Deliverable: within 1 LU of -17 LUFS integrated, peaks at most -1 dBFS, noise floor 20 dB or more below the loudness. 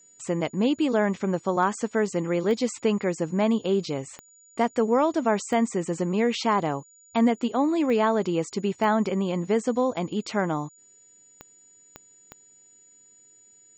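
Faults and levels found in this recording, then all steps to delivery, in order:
clicks 8; steady tone 6900 Hz; tone level -53 dBFS; loudness -25.5 LUFS; peak -10.5 dBFS; loudness target -17.0 LUFS
-> de-click; notch 6900 Hz, Q 30; gain +8.5 dB

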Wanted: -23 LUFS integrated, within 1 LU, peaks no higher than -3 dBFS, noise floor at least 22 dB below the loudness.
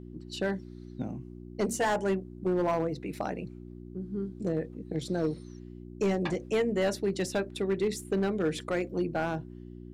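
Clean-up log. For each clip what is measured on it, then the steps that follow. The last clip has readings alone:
clipped 1.5%; flat tops at -21.5 dBFS; hum 60 Hz; harmonics up to 360 Hz; hum level -42 dBFS; loudness -31.5 LUFS; peak -21.5 dBFS; loudness target -23.0 LUFS
-> clip repair -21.5 dBFS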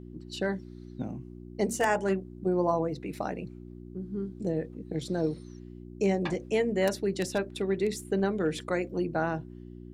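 clipped 0.0%; hum 60 Hz; harmonics up to 360 Hz; hum level -42 dBFS
-> de-hum 60 Hz, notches 6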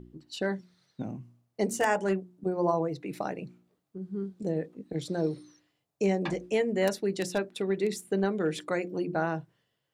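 hum none; loudness -31.0 LUFS; peak -12.5 dBFS; loudness target -23.0 LUFS
-> gain +8 dB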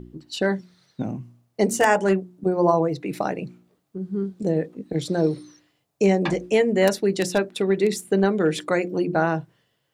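loudness -23.0 LUFS; peak -4.5 dBFS; noise floor -72 dBFS

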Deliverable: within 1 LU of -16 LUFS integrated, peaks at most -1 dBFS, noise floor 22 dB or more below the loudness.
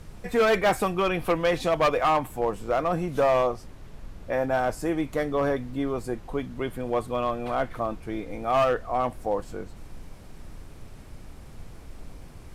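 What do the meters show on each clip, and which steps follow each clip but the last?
clipped 1.3%; flat tops at -16.5 dBFS; noise floor -45 dBFS; noise floor target -48 dBFS; loudness -26.0 LUFS; peak -16.5 dBFS; loudness target -16.0 LUFS
-> clip repair -16.5 dBFS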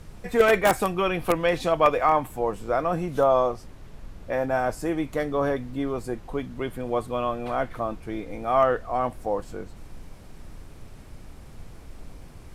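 clipped 0.0%; noise floor -45 dBFS; noise floor target -47 dBFS
-> noise print and reduce 6 dB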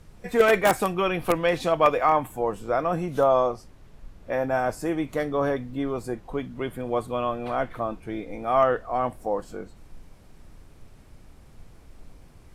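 noise floor -51 dBFS; loudness -25.0 LUFS; peak -7.0 dBFS; loudness target -16.0 LUFS
-> gain +9 dB; limiter -1 dBFS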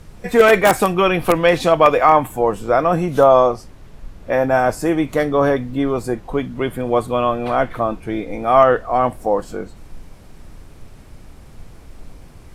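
loudness -16.5 LUFS; peak -1.0 dBFS; noise floor -42 dBFS

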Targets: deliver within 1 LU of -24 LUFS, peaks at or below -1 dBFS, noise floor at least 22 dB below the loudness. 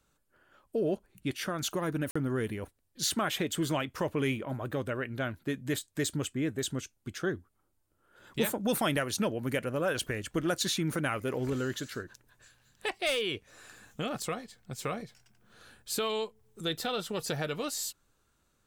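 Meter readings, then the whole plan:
dropouts 1; longest dropout 45 ms; loudness -33.0 LUFS; peak -16.0 dBFS; loudness target -24.0 LUFS
-> interpolate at 2.11, 45 ms; gain +9 dB

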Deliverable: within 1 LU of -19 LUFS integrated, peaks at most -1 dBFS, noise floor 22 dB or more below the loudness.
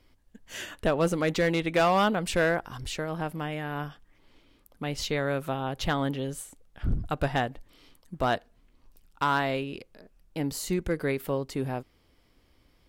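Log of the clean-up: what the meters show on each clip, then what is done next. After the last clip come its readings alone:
clipped 0.4%; flat tops at -17.0 dBFS; loudness -29.0 LUFS; peak -17.0 dBFS; loudness target -19.0 LUFS
-> clip repair -17 dBFS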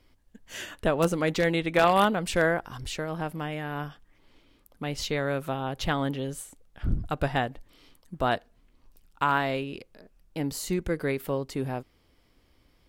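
clipped 0.0%; loudness -28.5 LUFS; peak -8.0 dBFS; loudness target -19.0 LUFS
-> gain +9.5 dB; limiter -1 dBFS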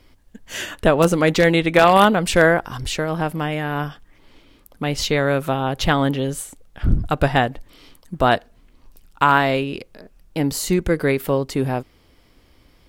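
loudness -19.5 LUFS; peak -1.0 dBFS; noise floor -55 dBFS

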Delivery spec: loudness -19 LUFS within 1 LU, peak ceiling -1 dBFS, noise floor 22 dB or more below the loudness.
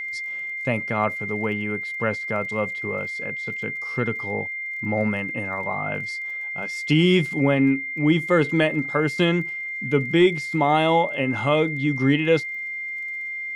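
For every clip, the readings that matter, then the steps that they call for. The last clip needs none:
ticks 23/s; steady tone 2100 Hz; tone level -28 dBFS; loudness -23.0 LUFS; peak -7.0 dBFS; loudness target -19.0 LUFS
-> de-click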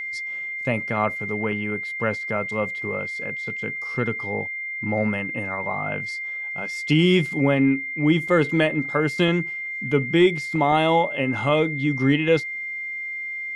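ticks 0/s; steady tone 2100 Hz; tone level -28 dBFS
-> notch 2100 Hz, Q 30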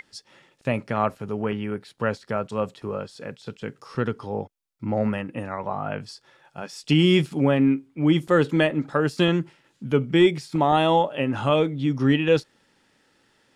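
steady tone none; loudness -23.5 LUFS; peak -7.5 dBFS; loudness target -19.0 LUFS
-> gain +4.5 dB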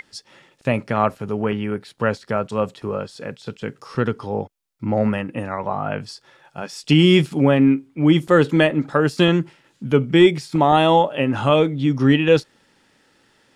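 loudness -19.0 LUFS; peak -3.0 dBFS; noise floor -60 dBFS

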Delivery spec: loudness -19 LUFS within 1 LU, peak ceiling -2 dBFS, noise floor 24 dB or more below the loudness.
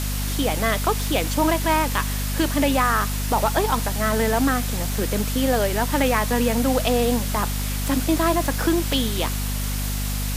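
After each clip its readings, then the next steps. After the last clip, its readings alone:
hum 50 Hz; harmonics up to 250 Hz; hum level -23 dBFS; noise floor -25 dBFS; noise floor target -46 dBFS; loudness -22.0 LUFS; peak -6.5 dBFS; loudness target -19.0 LUFS
-> de-hum 50 Hz, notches 5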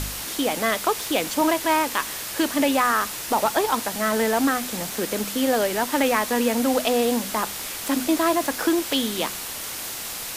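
hum none; noise floor -33 dBFS; noise floor target -47 dBFS
-> noise print and reduce 14 dB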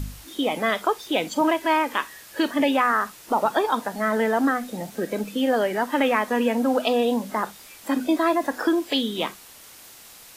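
noise floor -47 dBFS; noise floor target -48 dBFS
-> noise print and reduce 6 dB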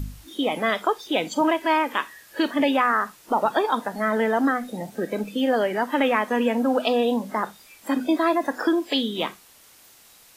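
noise floor -53 dBFS; loudness -23.5 LUFS; peak -8.0 dBFS; loudness target -19.0 LUFS
-> gain +4.5 dB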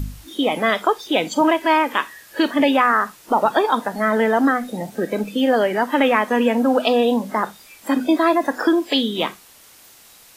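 loudness -19.0 LUFS; peak -3.5 dBFS; noise floor -48 dBFS

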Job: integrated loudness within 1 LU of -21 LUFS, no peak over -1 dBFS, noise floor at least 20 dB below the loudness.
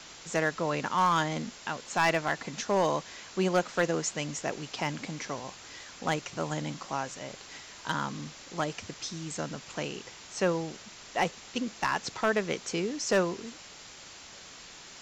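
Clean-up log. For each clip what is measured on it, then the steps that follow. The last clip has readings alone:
clipped 0.3%; flat tops at -18.0 dBFS; noise floor -49 dBFS; noise floor target -52 dBFS; loudness -31.5 LUFS; peak -18.0 dBFS; loudness target -21.0 LUFS
-> clip repair -18 dBFS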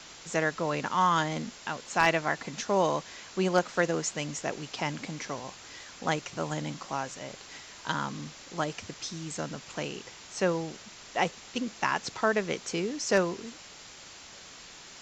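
clipped 0.0%; noise floor -49 dBFS; noise floor target -51 dBFS
-> denoiser 6 dB, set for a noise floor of -49 dBFS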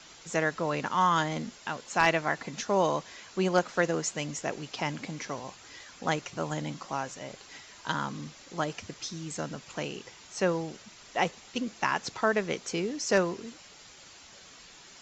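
noise floor -52 dBFS; loudness -31.0 LUFS; peak -9.0 dBFS; loudness target -21.0 LUFS
-> gain +10 dB; limiter -1 dBFS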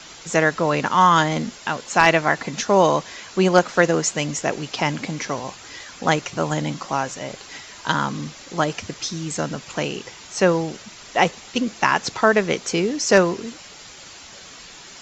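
loudness -21.0 LUFS; peak -1.0 dBFS; noise floor -42 dBFS

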